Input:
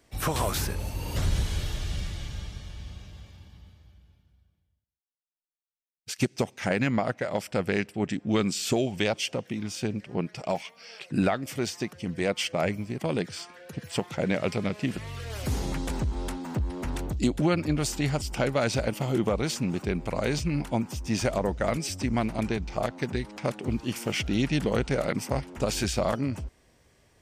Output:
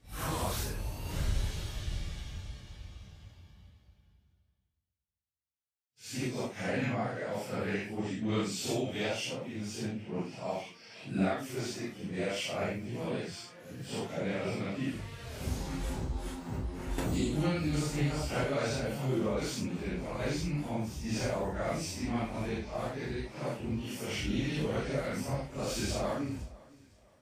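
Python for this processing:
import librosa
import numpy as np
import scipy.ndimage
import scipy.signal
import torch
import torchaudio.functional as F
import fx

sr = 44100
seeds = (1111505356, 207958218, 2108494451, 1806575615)

y = fx.phase_scramble(x, sr, seeds[0], window_ms=200)
y = fx.echo_feedback(y, sr, ms=509, feedback_pct=33, wet_db=-22.5)
y = fx.band_squash(y, sr, depth_pct=100, at=(16.98, 18.44))
y = y * librosa.db_to_amplitude(-6.0)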